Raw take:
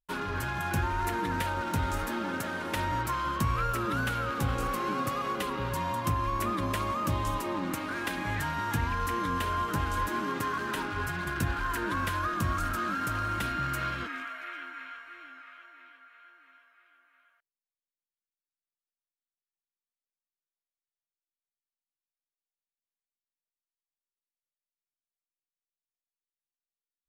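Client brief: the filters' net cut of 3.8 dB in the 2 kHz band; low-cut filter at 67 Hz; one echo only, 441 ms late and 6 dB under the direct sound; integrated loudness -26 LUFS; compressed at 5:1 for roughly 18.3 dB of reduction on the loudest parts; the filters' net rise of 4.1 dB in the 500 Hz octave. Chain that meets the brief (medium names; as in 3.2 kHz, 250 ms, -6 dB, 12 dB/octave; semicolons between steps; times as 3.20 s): high-pass 67 Hz; peaking EQ 500 Hz +5.5 dB; peaking EQ 2 kHz -6 dB; compression 5:1, threshold -46 dBFS; delay 441 ms -6 dB; trim +20.5 dB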